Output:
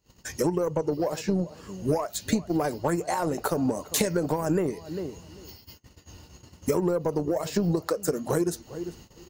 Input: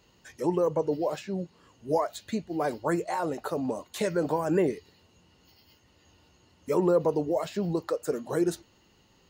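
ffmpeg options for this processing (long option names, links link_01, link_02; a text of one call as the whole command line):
ffmpeg -i in.wav -filter_complex "[0:a]asplit=2[link_01][link_02];[link_02]adelay=398,lowpass=frequency=1500:poles=1,volume=-20.5dB,asplit=2[link_03][link_04];[link_04]adelay=398,lowpass=frequency=1500:poles=1,volume=0.17[link_05];[link_01][link_03][link_05]amix=inputs=3:normalize=0,acompressor=threshold=-36dB:ratio=8,highshelf=frequency=7500:gain=-5.5,acontrast=60,aeval=exprs='0.126*(cos(1*acos(clip(val(0)/0.126,-1,1)))-cos(1*PI/2))+0.00447*(cos(7*acos(clip(val(0)/0.126,-1,1)))-cos(7*PI/2))':channel_layout=same,lowshelf=frequency=190:gain=8.5,agate=range=-26dB:threshold=-53dB:ratio=16:detection=peak,aexciter=amount=2.9:drive=5.7:freq=4900,volume=5.5dB" out.wav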